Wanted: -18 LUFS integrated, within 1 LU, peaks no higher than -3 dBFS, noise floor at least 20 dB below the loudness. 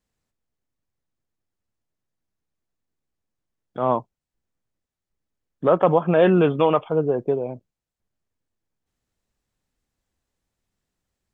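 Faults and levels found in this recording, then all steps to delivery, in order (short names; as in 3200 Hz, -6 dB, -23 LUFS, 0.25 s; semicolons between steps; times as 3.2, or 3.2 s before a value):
loudness -20.5 LUFS; peak -4.5 dBFS; loudness target -18.0 LUFS
-> gain +2.5 dB; limiter -3 dBFS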